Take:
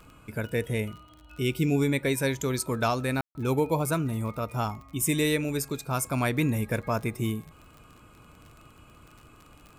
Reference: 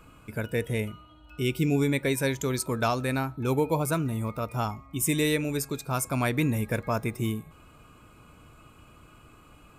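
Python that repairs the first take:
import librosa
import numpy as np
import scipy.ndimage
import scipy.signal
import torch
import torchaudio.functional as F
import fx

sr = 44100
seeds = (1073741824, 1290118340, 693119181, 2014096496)

y = fx.fix_declick_ar(x, sr, threshold=6.5)
y = fx.fix_ambience(y, sr, seeds[0], print_start_s=9.27, print_end_s=9.77, start_s=3.21, end_s=3.35)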